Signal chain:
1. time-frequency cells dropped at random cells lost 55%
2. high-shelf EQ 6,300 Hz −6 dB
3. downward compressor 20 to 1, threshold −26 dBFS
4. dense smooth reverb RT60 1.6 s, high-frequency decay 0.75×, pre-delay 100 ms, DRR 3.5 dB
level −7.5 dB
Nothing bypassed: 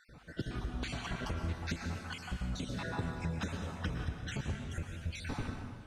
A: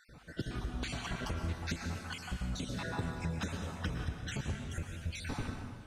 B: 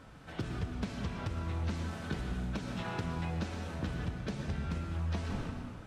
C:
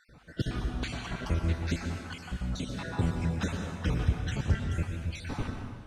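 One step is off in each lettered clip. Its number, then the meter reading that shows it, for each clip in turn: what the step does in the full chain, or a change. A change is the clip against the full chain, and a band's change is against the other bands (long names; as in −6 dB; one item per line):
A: 2, 8 kHz band +3.0 dB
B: 1, 8 kHz band −5.0 dB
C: 3, average gain reduction 4.0 dB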